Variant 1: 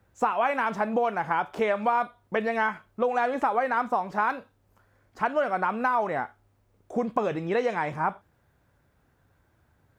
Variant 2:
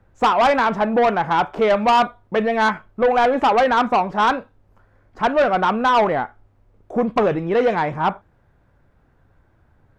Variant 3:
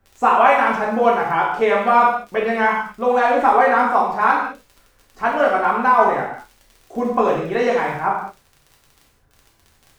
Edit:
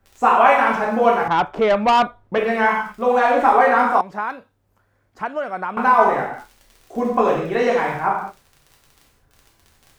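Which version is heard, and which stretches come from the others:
3
1.28–2.38 from 2
4.01–5.77 from 1

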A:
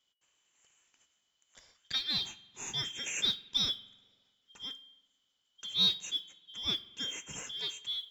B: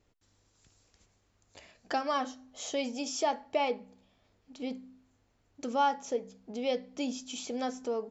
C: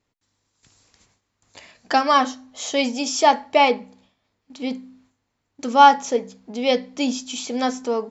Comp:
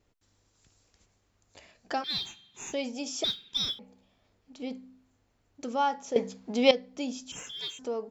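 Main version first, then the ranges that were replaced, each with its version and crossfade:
B
2.04–2.73 from A
3.24–3.79 from A
6.16–6.71 from C
7.32–7.79 from A

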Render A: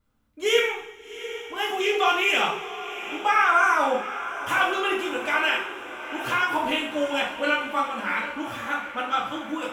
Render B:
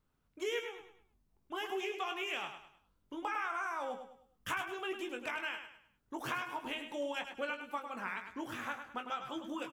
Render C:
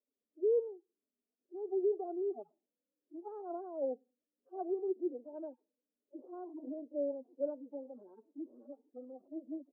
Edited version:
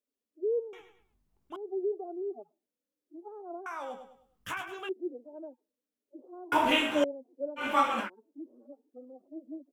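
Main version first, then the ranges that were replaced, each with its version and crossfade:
C
0.73–1.56 from B
3.66–4.89 from B
6.52–7.04 from A
7.61–8.05 from A, crossfade 0.10 s

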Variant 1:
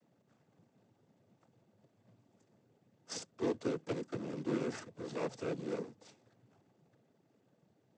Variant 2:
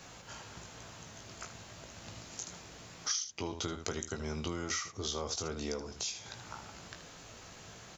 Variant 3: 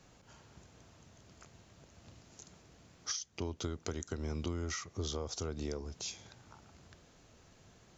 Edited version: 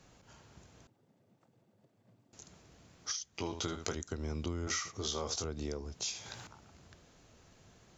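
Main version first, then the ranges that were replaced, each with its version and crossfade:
3
0.87–2.33 from 1
3.35–3.95 from 2
4.67–5.44 from 2
6.02–6.47 from 2

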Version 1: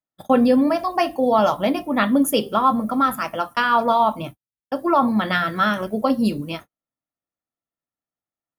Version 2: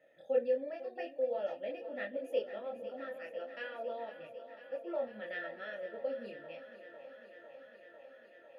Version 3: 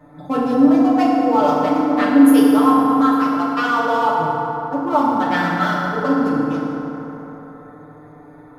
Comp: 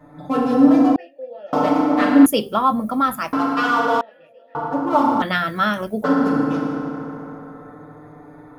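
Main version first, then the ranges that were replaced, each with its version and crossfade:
3
0.96–1.53 from 2
2.26–3.33 from 1
4.01–4.55 from 2
5.22–6.04 from 1

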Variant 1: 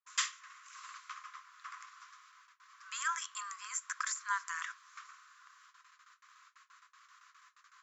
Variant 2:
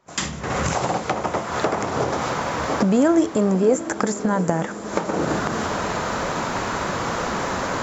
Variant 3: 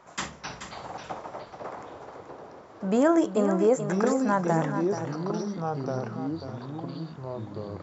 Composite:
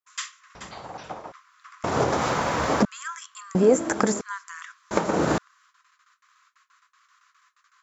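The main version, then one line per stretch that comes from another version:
1
0.55–1.32 from 3
1.84–2.85 from 2
3.55–4.21 from 2
4.91–5.38 from 2

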